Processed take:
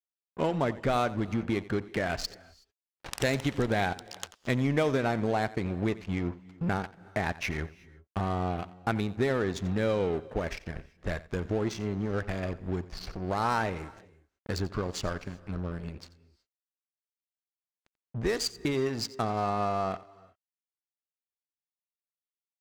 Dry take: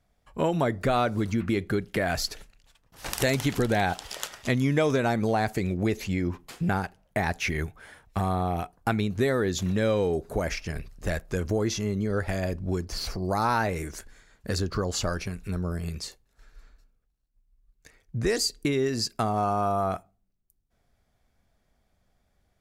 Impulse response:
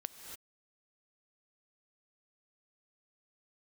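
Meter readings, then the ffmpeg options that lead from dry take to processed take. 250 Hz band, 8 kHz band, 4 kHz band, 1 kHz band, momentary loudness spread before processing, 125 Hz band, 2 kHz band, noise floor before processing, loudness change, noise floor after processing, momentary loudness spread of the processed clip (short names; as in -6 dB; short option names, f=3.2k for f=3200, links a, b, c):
-3.5 dB, -8.0 dB, -5.0 dB, -3.5 dB, 9 LU, -4.0 dB, -3.5 dB, -72 dBFS, -3.5 dB, under -85 dBFS, 11 LU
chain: -filter_complex "[0:a]aeval=exprs='sgn(val(0))*max(abs(val(0))-0.0141,0)':c=same,adynamicsmooth=sensitivity=6:basefreq=2.8k,asplit=2[a][b];[1:a]atrim=start_sample=2205,adelay=88[c];[b][c]afir=irnorm=-1:irlink=0,volume=-14.5dB[d];[a][d]amix=inputs=2:normalize=0,volume=-1.5dB"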